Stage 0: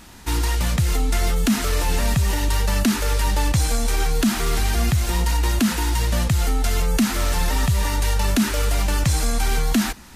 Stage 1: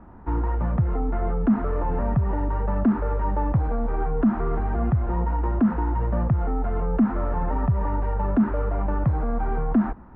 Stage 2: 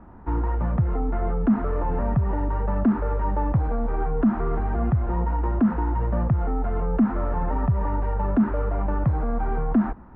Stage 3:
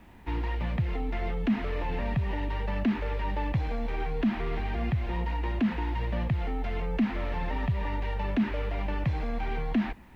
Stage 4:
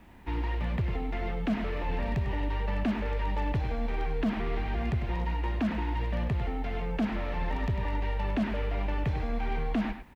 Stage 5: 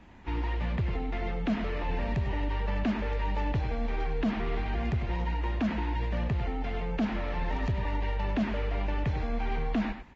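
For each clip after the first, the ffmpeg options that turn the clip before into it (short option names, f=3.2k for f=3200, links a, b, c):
-filter_complex "[0:a]lowpass=f=1.2k:w=0.5412,lowpass=f=1.2k:w=1.3066,acrossover=split=110[a][b];[a]alimiter=limit=-21.5dB:level=0:latency=1[c];[c][b]amix=inputs=2:normalize=0"
-af anull
-af "aexciter=amount=10:drive=8.8:freq=2.1k,volume=-6.5dB"
-filter_complex "[0:a]aeval=exprs='0.0841*(abs(mod(val(0)/0.0841+3,4)-2)-1)':c=same,asplit=2[a][b];[b]adelay=99.13,volume=-9dB,highshelf=f=4k:g=-2.23[c];[a][c]amix=inputs=2:normalize=0,volume=-1dB"
-ar 16000 -c:a libvorbis -b:a 32k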